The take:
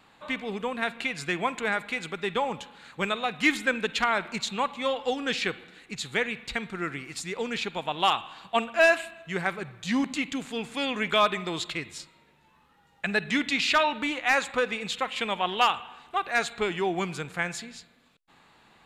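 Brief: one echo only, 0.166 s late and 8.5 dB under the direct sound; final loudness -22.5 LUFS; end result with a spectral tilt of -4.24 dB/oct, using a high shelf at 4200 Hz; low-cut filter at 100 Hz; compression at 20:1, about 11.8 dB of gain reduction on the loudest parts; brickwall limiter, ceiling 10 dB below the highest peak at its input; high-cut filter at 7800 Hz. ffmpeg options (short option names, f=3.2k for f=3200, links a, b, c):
-af "highpass=100,lowpass=7.8k,highshelf=f=4.2k:g=-7,acompressor=threshold=-28dB:ratio=20,alimiter=level_in=1dB:limit=-24dB:level=0:latency=1,volume=-1dB,aecho=1:1:166:0.376,volume=13.5dB"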